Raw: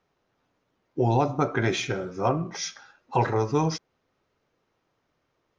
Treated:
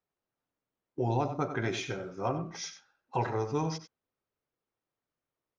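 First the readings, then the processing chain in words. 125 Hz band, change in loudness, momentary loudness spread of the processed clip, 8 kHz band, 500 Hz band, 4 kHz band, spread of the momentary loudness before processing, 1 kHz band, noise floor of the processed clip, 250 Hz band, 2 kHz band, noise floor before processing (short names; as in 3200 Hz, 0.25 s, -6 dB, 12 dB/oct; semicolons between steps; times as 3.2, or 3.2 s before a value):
-7.0 dB, -7.5 dB, 10 LU, n/a, -7.0 dB, -7.5 dB, 10 LU, -7.0 dB, under -85 dBFS, -7.0 dB, -7.0 dB, -75 dBFS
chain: gate -39 dBFS, range -10 dB; outdoor echo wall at 16 m, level -11 dB; gain -7.5 dB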